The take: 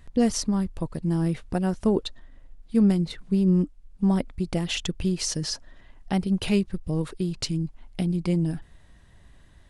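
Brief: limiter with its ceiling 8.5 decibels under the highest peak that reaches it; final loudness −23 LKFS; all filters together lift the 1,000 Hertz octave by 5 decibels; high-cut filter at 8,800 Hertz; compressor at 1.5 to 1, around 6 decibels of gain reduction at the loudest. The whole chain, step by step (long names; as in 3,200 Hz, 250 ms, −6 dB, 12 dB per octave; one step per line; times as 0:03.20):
low-pass filter 8,800 Hz
parametric band 1,000 Hz +7 dB
downward compressor 1.5 to 1, threshold −33 dBFS
level +10.5 dB
brickwall limiter −13 dBFS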